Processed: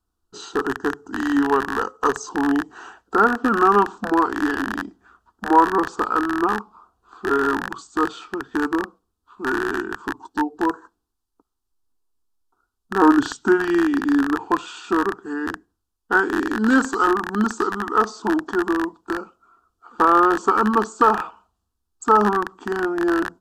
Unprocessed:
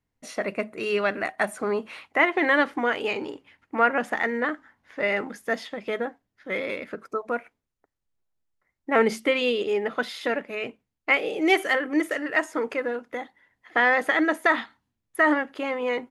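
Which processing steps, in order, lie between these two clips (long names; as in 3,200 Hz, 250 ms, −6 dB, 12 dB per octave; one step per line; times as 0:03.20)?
loose part that buzzes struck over −41 dBFS, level −13 dBFS
phaser with its sweep stopped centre 840 Hz, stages 6
change of speed 0.688×
level +7 dB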